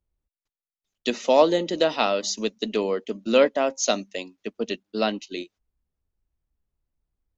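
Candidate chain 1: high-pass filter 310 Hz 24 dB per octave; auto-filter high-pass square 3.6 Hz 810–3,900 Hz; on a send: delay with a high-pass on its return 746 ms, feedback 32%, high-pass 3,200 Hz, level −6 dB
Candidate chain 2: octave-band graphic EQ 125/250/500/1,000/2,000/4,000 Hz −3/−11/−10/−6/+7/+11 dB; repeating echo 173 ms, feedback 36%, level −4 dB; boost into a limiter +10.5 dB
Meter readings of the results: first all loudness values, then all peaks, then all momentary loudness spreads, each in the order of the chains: −26.0, −13.5 LKFS; −4.0, −1.0 dBFS; 17, 10 LU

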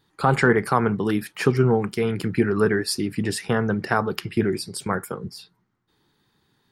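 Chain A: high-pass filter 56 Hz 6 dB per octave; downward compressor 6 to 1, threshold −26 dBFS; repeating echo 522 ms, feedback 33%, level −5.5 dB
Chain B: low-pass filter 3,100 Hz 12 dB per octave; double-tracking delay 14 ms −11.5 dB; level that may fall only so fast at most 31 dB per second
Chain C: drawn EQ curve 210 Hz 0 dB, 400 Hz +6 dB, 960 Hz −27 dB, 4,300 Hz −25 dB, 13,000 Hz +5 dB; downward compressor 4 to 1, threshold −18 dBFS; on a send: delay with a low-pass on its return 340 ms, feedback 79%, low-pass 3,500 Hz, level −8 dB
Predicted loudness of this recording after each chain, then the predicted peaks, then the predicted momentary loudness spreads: −30.0, −20.5, −24.0 LKFS; −9.5, −3.5, −8.5 dBFS; 11, 8, 13 LU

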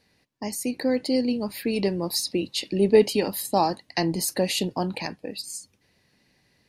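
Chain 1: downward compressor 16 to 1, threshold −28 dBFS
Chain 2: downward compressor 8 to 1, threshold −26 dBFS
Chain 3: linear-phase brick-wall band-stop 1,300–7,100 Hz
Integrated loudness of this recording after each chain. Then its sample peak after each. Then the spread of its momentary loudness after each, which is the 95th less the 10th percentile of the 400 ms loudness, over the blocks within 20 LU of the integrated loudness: −33.0, −31.5, −26.0 LKFS; −15.5, −14.5, −5.5 dBFS; 4, 5, 17 LU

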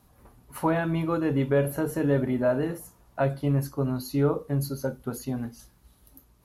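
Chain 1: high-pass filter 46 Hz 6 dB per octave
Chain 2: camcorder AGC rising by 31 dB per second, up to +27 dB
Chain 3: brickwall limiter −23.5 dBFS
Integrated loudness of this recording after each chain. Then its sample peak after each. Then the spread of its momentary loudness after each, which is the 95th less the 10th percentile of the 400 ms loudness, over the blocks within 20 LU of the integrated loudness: −27.5, −27.0, −32.5 LKFS; −12.5, −11.0, −23.5 dBFS; 10, 9, 7 LU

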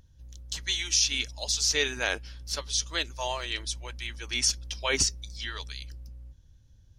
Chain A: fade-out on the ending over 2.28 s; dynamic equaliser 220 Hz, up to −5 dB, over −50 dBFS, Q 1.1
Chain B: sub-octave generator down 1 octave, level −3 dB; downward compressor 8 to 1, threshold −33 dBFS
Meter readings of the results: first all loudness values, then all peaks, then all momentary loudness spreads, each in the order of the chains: −28.0, −37.0 LKFS; −12.0, −16.0 dBFS; 16, 11 LU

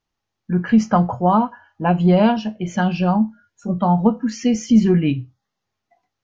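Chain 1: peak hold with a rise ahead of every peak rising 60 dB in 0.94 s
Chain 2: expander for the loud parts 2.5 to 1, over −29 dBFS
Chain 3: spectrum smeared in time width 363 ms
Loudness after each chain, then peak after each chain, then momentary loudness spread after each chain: −16.5, −23.5, −22.5 LKFS; −1.5, −4.5, −9.5 dBFS; 10, 17, 10 LU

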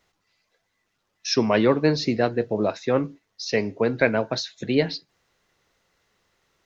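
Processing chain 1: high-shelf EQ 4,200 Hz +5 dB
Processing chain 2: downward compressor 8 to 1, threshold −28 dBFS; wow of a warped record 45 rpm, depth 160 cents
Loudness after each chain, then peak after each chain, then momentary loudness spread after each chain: −23.5, −33.5 LKFS; −5.5, −15.5 dBFS; 8, 5 LU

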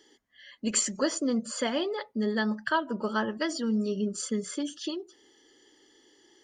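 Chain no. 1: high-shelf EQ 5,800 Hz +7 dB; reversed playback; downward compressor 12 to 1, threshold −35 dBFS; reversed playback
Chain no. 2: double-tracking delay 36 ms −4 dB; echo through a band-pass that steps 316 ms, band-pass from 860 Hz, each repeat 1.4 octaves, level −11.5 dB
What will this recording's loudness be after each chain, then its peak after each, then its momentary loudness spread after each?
−39.0, −28.5 LKFS; −25.0, −13.0 dBFS; 20, 8 LU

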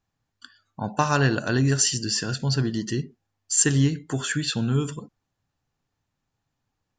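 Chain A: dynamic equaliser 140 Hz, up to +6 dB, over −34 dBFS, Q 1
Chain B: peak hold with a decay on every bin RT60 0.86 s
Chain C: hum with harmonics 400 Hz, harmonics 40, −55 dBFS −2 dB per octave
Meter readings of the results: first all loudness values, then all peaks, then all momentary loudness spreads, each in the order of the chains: −21.0, −21.0, −24.0 LKFS; −5.5, −4.0, −7.0 dBFS; 11, 14, 11 LU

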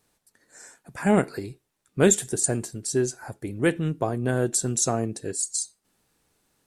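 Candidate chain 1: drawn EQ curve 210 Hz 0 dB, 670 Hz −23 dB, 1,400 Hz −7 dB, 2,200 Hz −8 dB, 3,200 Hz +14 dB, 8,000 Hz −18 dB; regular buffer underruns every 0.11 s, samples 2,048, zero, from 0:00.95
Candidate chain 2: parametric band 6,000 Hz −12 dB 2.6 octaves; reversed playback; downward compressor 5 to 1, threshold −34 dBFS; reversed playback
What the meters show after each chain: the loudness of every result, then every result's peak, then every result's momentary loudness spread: −32.5, −38.5 LKFS; −10.5, −21.0 dBFS; 14, 13 LU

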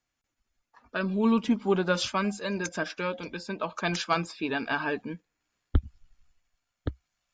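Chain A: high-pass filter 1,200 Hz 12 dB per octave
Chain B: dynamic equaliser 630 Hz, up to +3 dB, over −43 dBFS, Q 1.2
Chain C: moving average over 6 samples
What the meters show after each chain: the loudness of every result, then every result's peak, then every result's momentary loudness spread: −35.0, −29.0, −30.0 LKFS; −16.0, −10.0, −10.5 dBFS; 14, 13, 13 LU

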